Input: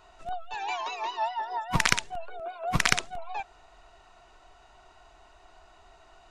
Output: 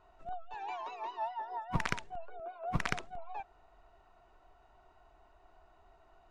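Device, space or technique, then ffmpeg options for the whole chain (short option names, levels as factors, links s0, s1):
through cloth: -af "highshelf=f=2400:g=-16,volume=0.531"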